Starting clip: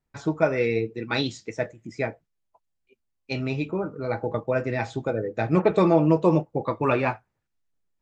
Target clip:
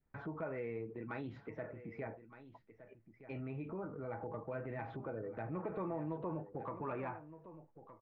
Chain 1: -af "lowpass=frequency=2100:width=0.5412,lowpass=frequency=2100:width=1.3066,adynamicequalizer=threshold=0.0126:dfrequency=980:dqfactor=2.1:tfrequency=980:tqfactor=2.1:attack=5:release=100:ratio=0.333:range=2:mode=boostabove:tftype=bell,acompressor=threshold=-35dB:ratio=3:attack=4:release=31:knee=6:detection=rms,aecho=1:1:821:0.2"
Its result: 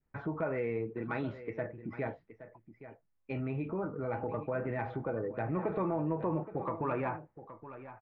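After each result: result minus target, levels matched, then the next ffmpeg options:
downward compressor: peak gain reduction −7.5 dB; echo 396 ms early
-af "lowpass=frequency=2100:width=0.5412,lowpass=frequency=2100:width=1.3066,adynamicequalizer=threshold=0.0126:dfrequency=980:dqfactor=2.1:tfrequency=980:tqfactor=2.1:attack=5:release=100:ratio=0.333:range=2:mode=boostabove:tftype=bell,acompressor=threshold=-46.5dB:ratio=3:attack=4:release=31:knee=6:detection=rms,aecho=1:1:821:0.2"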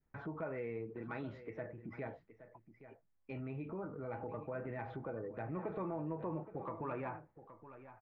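echo 396 ms early
-af "lowpass=frequency=2100:width=0.5412,lowpass=frequency=2100:width=1.3066,adynamicequalizer=threshold=0.0126:dfrequency=980:dqfactor=2.1:tfrequency=980:tqfactor=2.1:attack=5:release=100:ratio=0.333:range=2:mode=boostabove:tftype=bell,acompressor=threshold=-46.5dB:ratio=3:attack=4:release=31:knee=6:detection=rms,aecho=1:1:1217:0.2"

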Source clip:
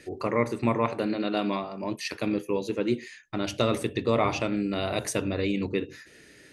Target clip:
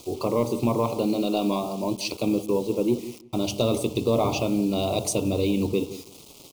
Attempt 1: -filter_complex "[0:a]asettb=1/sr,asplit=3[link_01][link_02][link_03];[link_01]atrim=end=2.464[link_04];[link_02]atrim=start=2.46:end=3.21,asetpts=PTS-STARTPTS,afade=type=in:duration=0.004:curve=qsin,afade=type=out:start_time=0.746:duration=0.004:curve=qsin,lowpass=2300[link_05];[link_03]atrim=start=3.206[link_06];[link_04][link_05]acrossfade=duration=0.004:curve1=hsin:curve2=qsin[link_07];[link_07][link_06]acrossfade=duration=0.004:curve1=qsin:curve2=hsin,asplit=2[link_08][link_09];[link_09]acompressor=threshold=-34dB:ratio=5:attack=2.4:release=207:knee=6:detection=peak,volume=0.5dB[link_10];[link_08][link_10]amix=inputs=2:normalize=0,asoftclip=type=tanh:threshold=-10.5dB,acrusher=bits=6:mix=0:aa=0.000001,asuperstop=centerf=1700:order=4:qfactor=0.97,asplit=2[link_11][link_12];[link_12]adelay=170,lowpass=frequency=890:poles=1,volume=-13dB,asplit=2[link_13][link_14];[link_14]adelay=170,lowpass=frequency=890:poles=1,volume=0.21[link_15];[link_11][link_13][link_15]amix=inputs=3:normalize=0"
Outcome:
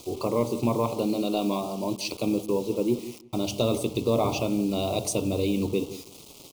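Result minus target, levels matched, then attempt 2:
downward compressor: peak gain reduction +7.5 dB
-filter_complex "[0:a]asettb=1/sr,asplit=3[link_01][link_02][link_03];[link_01]atrim=end=2.464[link_04];[link_02]atrim=start=2.46:end=3.21,asetpts=PTS-STARTPTS,afade=type=in:duration=0.004:curve=qsin,afade=type=out:start_time=0.746:duration=0.004:curve=qsin,lowpass=2300[link_05];[link_03]atrim=start=3.206[link_06];[link_04][link_05]acrossfade=duration=0.004:curve1=hsin:curve2=qsin[link_07];[link_07][link_06]acrossfade=duration=0.004:curve1=qsin:curve2=hsin,asplit=2[link_08][link_09];[link_09]acompressor=threshold=-24.5dB:ratio=5:attack=2.4:release=207:knee=6:detection=peak,volume=0.5dB[link_10];[link_08][link_10]amix=inputs=2:normalize=0,asoftclip=type=tanh:threshold=-10.5dB,acrusher=bits=6:mix=0:aa=0.000001,asuperstop=centerf=1700:order=4:qfactor=0.97,asplit=2[link_11][link_12];[link_12]adelay=170,lowpass=frequency=890:poles=1,volume=-13dB,asplit=2[link_13][link_14];[link_14]adelay=170,lowpass=frequency=890:poles=1,volume=0.21[link_15];[link_11][link_13][link_15]amix=inputs=3:normalize=0"

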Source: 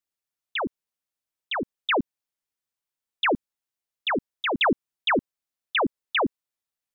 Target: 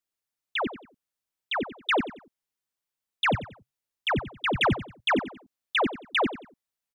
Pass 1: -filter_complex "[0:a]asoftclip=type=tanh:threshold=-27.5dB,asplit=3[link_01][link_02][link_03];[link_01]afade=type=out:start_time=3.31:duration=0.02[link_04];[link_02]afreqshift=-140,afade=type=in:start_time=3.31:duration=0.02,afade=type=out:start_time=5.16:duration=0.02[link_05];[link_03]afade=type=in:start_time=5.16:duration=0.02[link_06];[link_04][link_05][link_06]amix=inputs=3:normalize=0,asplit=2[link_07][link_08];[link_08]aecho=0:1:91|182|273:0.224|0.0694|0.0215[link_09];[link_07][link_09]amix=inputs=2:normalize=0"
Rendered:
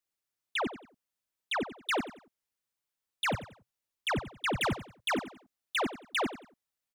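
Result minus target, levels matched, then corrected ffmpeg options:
soft clipping: distortion +14 dB
-filter_complex "[0:a]asoftclip=type=tanh:threshold=-16dB,asplit=3[link_01][link_02][link_03];[link_01]afade=type=out:start_time=3.31:duration=0.02[link_04];[link_02]afreqshift=-140,afade=type=in:start_time=3.31:duration=0.02,afade=type=out:start_time=5.16:duration=0.02[link_05];[link_03]afade=type=in:start_time=5.16:duration=0.02[link_06];[link_04][link_05][link_06]amix=inputs=3:normalize=0,asplit=2[link_07][link_08];[link_08]aecho=0:1:91|182|273:0.224|0.0694|0.0215[link_09];[link_07][link_09]amix=inputs=2:normalize=0"

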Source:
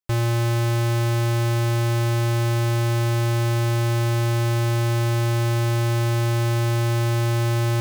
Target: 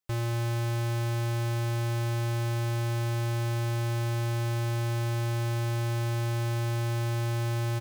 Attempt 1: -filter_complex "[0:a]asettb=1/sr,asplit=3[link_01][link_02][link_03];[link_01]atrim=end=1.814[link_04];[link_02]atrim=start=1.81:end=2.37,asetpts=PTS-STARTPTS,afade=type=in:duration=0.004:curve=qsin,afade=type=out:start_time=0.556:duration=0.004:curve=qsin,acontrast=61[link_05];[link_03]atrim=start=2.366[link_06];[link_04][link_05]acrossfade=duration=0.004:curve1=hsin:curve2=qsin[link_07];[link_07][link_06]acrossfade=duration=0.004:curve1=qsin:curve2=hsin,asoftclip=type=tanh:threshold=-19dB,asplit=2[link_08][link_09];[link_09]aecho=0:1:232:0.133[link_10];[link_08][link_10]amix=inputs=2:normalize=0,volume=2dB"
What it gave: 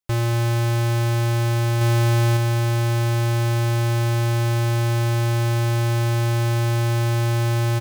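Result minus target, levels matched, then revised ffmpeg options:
soft clipping: distortion −4 dB
-filter_complex "[0:a]asettb=1/sr,asplit=3[link_01][link_02][link_03];[link_01]atrim=end=1.814[link_04];[link_02]atrim=start=1.81:end=2.37,asetpts=PTS-STARTPTS,afade=type=in:duration=0.004:curve=qsin,afade=type=out:start_time=0.556:duration=0.004:curve=qsin,acontrast=61[link_05];[link_03]atrim=start=2.366[link_06];[link_04][link_05]acrossfade=duration=0.004:curve1=hsin:curve2=qsin[link_07];[link_07][link_06]acrossfade=duration=0.004:curve1=qsin:curve2=hsin,asoftclip=type=tanh:threshold=-31dB,asplit=2[link_08][link_09];[link_09]aecho=0:1:232:0.133[link_10];[link_08][link_10]amix=inputs=2:normalize=0,volume=2dB"

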